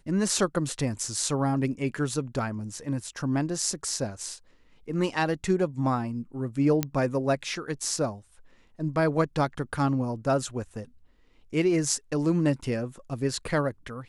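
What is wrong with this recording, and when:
6.83 s: pop -10 dBFS

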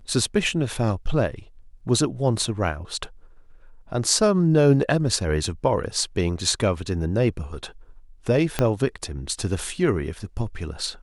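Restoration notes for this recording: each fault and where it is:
8.59 s: pop -7 dBFS

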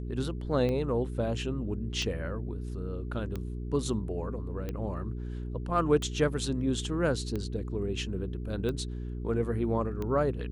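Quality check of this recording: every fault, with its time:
hum 60 Hz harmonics 7 -36 dBFS
tick 45 rpm -22 dBFS

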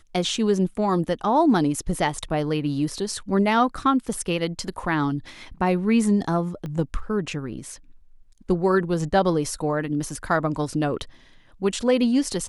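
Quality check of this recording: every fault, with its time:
6.66 s: pop -22 dBFS

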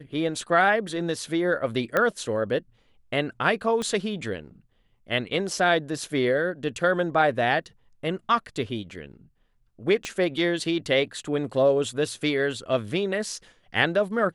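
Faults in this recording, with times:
1.97 s: pop -10 dBFS
3.82 s: pop -17 dBFS
10.05 s: pop -16 dBFS

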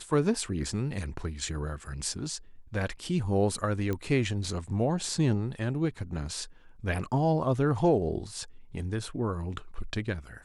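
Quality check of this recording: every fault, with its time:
3.93 s: pop -19 dBFS

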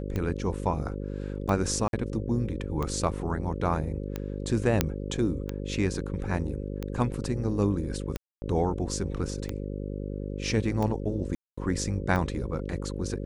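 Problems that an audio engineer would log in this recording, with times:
buzz 50 Hz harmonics 11 -34 dBFS
tick 45 rpm -18 dBFS
1.88–1.93 s: dropout 52 ms
4.81 s: pop -6 dBFS
8.17–8.42 s: dropout 250 ms
11.35–11.57 s: dropout 225 ms

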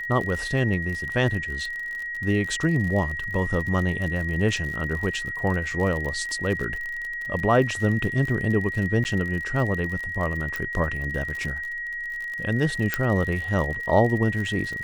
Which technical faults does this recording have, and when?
crackle 52 per s -30 dBFS
whine 1.9 kHz -29 dBFS
9.04–9.05 s: dropout 9.5 ms
10.56 s: pop
12.94 s: pop -8 dBFS

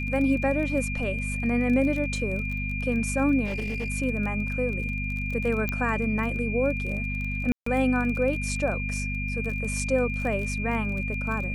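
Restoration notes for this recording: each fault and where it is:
crackle 25 per s -32 dBFS
hum 50 Hz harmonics 5 -31 dBFS
whine 2.4 kHz -32 dBFS
3.45–3.90 s: clipped -25.5 dBFS
5.69 s: pop -14 dBFS
7.52–7.66 s: dropout 144 ms

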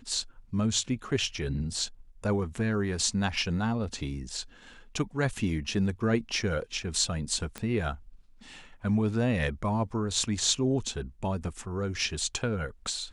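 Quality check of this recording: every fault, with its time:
7.58 s: pop -20 dBFS

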